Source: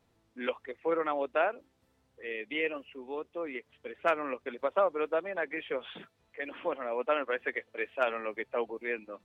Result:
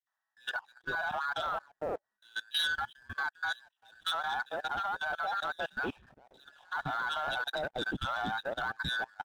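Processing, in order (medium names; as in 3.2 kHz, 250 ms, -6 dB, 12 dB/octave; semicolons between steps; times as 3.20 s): every band turned upside down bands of 2 kHz; peaking EQ 800 Hz +11.5 dB 0.73 oct; three bands offset in time highs, mids, lows 70/460 ms, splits 650/2000 Hz; level held to a coarse grid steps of 19 dB; 2.47–4.70 s: tilt EQ +2.5 dB/octave; waveshaping leveller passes 2; upward expansion 1.5:1, over -46 dBFS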